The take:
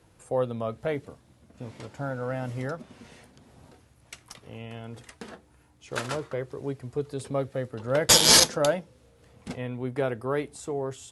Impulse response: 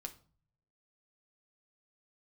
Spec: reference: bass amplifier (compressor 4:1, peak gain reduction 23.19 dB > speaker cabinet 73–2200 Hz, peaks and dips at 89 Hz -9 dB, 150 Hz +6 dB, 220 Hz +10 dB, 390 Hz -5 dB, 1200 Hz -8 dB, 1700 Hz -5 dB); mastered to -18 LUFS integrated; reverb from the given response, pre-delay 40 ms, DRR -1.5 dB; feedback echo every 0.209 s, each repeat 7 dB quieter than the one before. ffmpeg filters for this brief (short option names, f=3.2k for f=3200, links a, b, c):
-filter_complex "[0:a]aecho=1:1:209|418|627|836|1045:0.447|0.201|0.0905|0.0407|0.0183,asplit=2[a][b];[1:a]atrim=start_sample=2205,adelay=40[c];[b][c]afir=irnorm=-1:irlink=0,volume=5dB[d];[a][d]amix=inputs=2:normalize=0,acompressor=threshold=-37dB:ratio=4,highpass=f=73:w=0.5412,highpass=f=73:w=1.3066,equalizer=f=89:t=q:w=4:g=-9,equalizer=f=150:t=q:w=4:g=6,equalizer=f=220:t=q:w=4:g=10,equalizer=f=390:t=q:w=4:g=-5,equalizer=f=1.2k:t=q:w=4:g=-8,equalizer=f=1.7k:t=q:w=4:g=-5,lowpass=f=2.2k:w=0.5412,lowpass=f=2.2k:w=1.3066,volume=20.5dB"